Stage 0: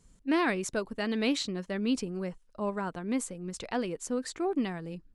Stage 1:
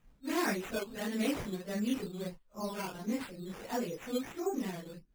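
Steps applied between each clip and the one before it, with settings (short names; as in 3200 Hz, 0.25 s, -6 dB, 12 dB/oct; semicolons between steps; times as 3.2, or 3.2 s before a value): phase scrambler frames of 0.1 s; high shelf 10000 Hz -7.5 dB; decimation with a swept rate 9×, swing 60% 1.5 Hz; gain -4.5 dB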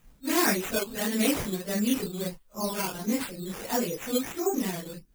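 high shelf 5600 Hz +11 dB; gain +6.5 dB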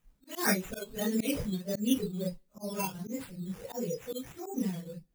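two-slope reverb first 0.35 s, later 2 s, from -26 dB, DRR 17 dB; spectral noise reduction 13 dB; auto swell 0.159 s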